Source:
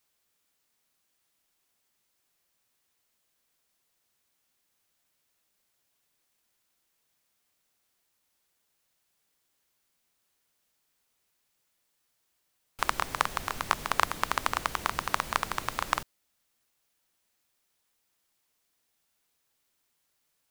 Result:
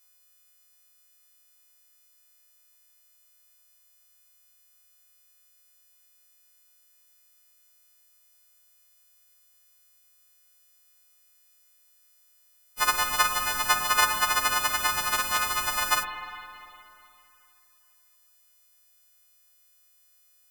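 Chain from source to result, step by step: frequency quantiser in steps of 3 st; spring tank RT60 2.8 s, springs 49/57 ms, chirp 30 ms, DRR 5 dB; 14.94–15.67 overloaded stage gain 20.5 dB

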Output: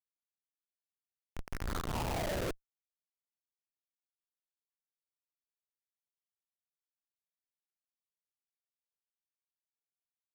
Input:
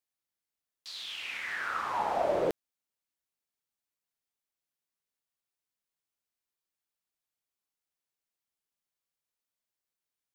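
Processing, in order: median filter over 9 samples; thin delay 71 ms, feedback 30%, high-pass 1600 Hz, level -23 dB; Schmitt trigger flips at -29 dBFS; gain +6 dB

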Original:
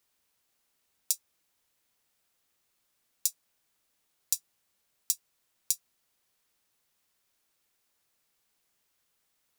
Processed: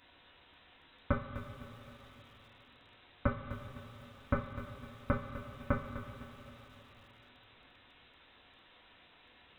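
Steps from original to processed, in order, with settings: two-slope reverb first 0.24 s, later 3.8 s, from -18 dB, DRR -3.5 dB; inverted band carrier 3900 Hz; lo-fi delay 0.252 s, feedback 35%, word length 12-bit, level -12 dB; gain +16 dB

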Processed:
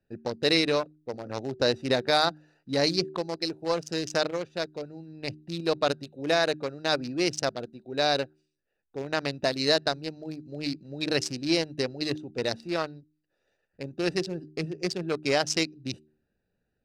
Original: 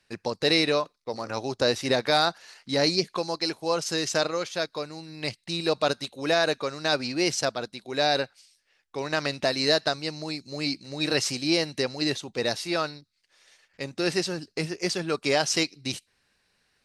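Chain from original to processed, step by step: Wiener smoothing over 41 samples; de-hum 76.26 Hz, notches 5

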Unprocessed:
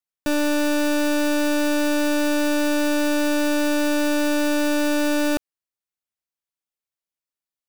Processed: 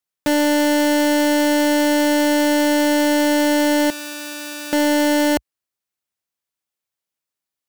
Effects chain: HPF 57 Hz 24 dB/oct; 3.9–4.73 passive tone stack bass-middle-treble 5-5-5; in parallel at -1 dB: wrapped overs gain 15 dB

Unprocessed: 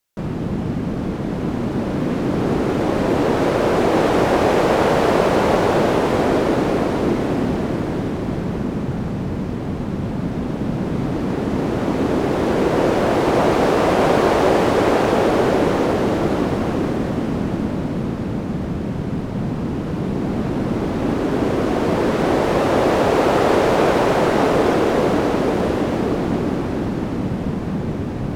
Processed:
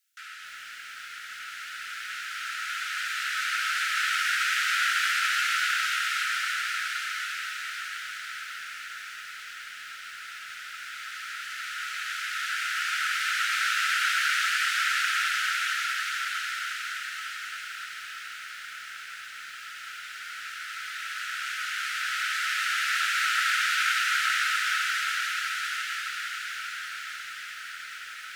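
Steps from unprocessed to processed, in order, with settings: Chebyshev high-pass 1300 Hz, order 10; on a send: diffused feedback echo 1.462 s, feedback 60%, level -15.5 dB; on the sum: lo-fi delay 0.274 s, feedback 35%, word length 9-bit, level -6.5 dB; gain +2 dB

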